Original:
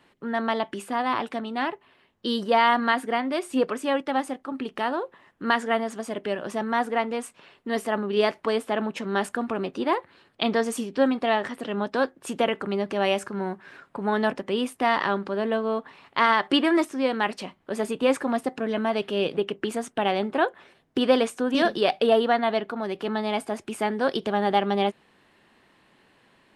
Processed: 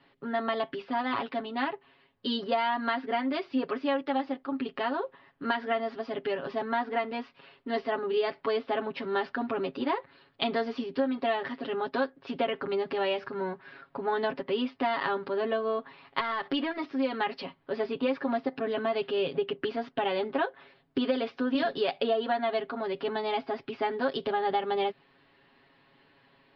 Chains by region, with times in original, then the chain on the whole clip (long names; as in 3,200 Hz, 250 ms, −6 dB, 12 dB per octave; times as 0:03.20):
0:16.20–0:16.84: leveller curve on the samples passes 1 + downward compressor 3 to 1, threshold −27 dBFS
whole clip: Butterworth low-pass 5,000 Hz 72 dB per octave; comb filter 7.3 ms, depth 94%; downward compressor, threshold −19 dBFS; level −5 dB